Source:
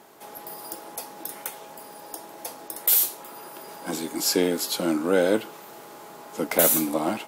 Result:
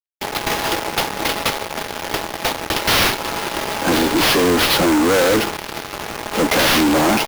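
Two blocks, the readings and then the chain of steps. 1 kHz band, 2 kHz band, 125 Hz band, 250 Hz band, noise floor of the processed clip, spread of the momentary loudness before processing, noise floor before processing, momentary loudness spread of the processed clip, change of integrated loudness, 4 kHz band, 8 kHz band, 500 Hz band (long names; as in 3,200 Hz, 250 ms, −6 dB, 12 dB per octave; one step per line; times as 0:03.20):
+14.5 dB, +16.0 dB, +13.0 dB, +9.5 dB, −32 dBFS, 23 LU, −44 dBFS, 12 LU, +6.0 dB, +14.5 dB, +4.0 dB, +7.5 dB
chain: fuzz pedal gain 40 dB, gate −41 dBFS
sample-rate reduction 7,900 Hz, jitter 20%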